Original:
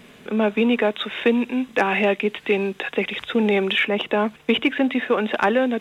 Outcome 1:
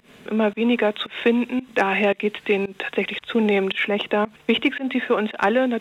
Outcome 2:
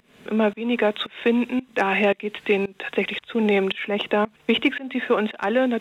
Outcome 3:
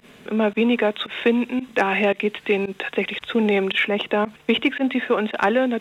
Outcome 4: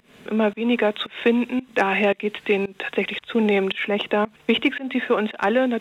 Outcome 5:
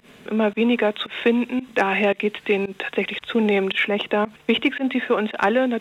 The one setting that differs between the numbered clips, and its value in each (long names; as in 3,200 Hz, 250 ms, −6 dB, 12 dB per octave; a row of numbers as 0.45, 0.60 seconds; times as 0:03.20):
fake sidechain pumping, release: 165, 375, 71, 251, 106 milliseconds